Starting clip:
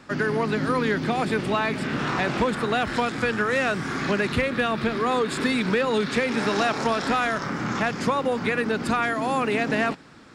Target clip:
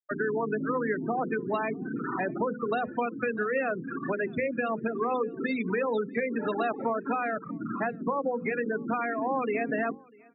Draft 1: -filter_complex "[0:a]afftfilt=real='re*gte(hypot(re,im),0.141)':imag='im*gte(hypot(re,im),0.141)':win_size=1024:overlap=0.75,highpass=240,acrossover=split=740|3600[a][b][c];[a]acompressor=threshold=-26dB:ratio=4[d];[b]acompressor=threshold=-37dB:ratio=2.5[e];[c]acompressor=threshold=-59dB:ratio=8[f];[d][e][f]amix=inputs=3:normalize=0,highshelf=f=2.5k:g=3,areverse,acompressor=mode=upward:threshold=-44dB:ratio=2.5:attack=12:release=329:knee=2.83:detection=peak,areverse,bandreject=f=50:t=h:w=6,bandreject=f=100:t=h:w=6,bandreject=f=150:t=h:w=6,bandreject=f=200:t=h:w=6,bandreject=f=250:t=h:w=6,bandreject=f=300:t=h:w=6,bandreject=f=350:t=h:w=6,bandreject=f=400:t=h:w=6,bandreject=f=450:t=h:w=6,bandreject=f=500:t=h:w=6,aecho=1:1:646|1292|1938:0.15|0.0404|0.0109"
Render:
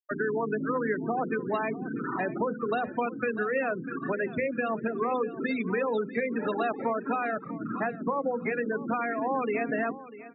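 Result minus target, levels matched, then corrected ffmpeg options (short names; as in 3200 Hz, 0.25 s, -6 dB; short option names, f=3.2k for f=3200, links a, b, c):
echo-to-direct +10.5 dB
-filter_complex "[0:a]afftfilt=real='re*gte(hypot(re,im),0.141)':imag='im*gte(hypot(re,im),0.141)':win_size=1024:overlap=0.75,highpass=240,acrossover=split=740|3600[a][b][c];[a]acompressor=threshold=-26dB:ratio=4[d];[b]acompressor=threshold=-37dB:ratio=2.5[e];[c]acompressor=threshold=-59dB:ratio=8[f];[d][e][f]amix=inputs=3:normalize=0,highshelf=f=2.5k:g=3,areverse,acompressor=mode=upward:threshold=-44dB:ratio=2.5:attack=12:release=329:knee=2.83:detection=peak,areverse,bandreject=f=50:t=h:w=6,bandreject=f=100:t=h:w=6,bandreject=f=150:t=h:w=6,bandreject=f=200:t=h:w=6,bandreject=f=250:t=h:w=6,bandreject=f=300:t=h:w=6,bandreject=f=350:t=h:w=6,bandreject=f=400:t=h:w=6,bandreject=f=450:t=h:w=6,bandreject=f=500:t=h:w=6,aecho=1:1:646|1292:0.0447|0.0121"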